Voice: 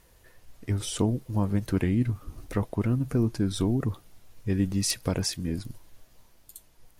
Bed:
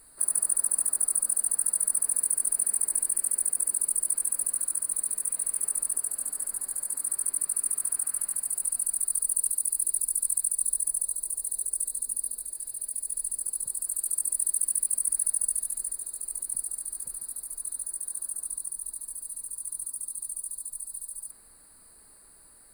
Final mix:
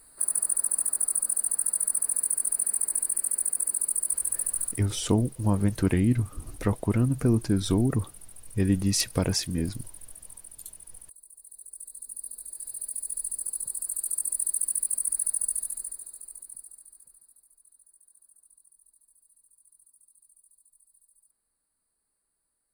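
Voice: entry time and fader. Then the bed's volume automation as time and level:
4.10 s, +2.0 dB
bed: 4.67 s -0.5 dB
4.87 s -19.5 dB
11.32 s -19.5 dB
12.70 s -1 dB
15.64 s -1 dB
17.59 s -24.5 dB

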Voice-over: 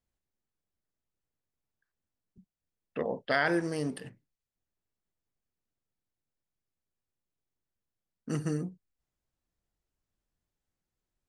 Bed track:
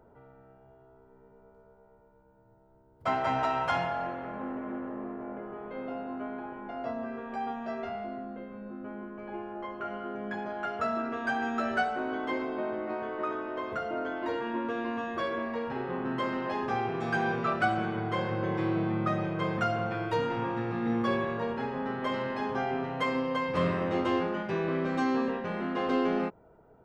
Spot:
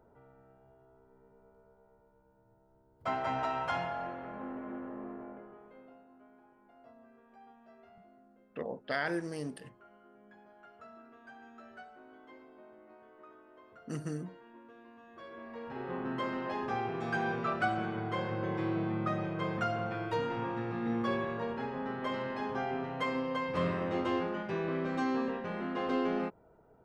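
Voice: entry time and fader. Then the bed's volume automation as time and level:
5.60 s, -6.0 dB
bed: 5.17 s -5 dB
6.08 s -22.5 dB
14.99 s -22.5 dB
15.91 s -4 dB

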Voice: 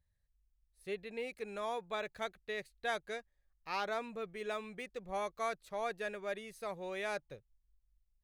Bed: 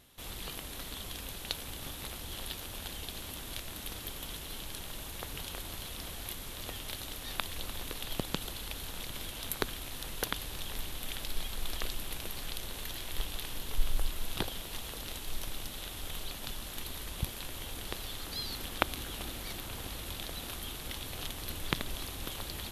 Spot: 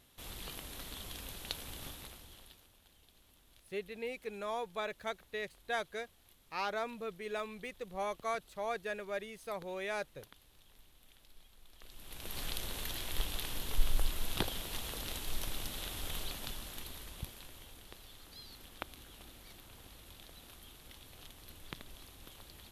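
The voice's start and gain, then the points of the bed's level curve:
2.85 s, +0.5 dB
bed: 1.86 s -4 dB
2.78 s -24 dB
11.72 s -24 dB
12.39 s 0 dB
16.20 s 0 dB
17.87 s -14 dB

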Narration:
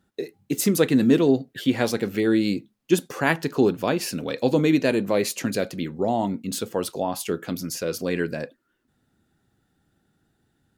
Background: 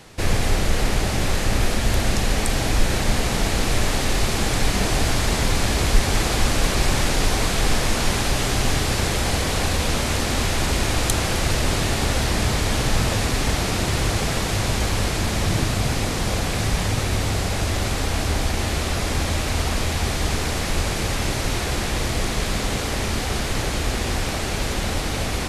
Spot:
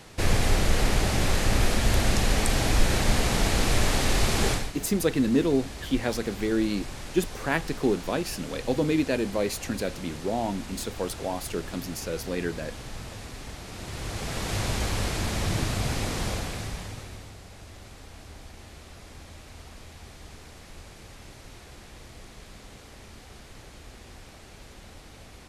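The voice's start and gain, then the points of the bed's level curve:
4.25 s, -5.0 dB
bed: 4.51 s -2.5 dB
4.73 s -18.5 dB
13.64 s -18.5 dB
14.56 s -6 dB
16.25 s -6 dB
17.37 s -23 dB

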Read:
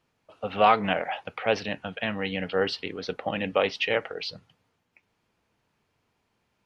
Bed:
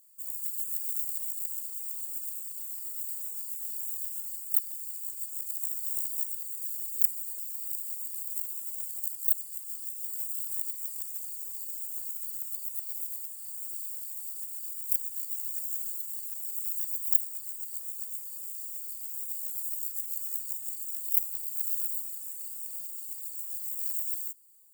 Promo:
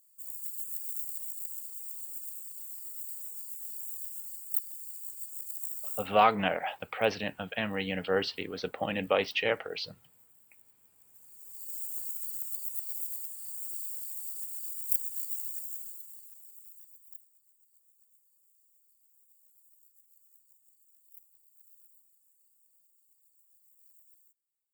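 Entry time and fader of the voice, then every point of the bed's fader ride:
5.55 s, -3.0 dB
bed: 5.95 s -4.5 dB
6.17 s -27.5 dB
10.94 s -27.5 dB
11.76 s -0.5 dB
15.32 s -0.5 dB
17.42 s -28.5 dB

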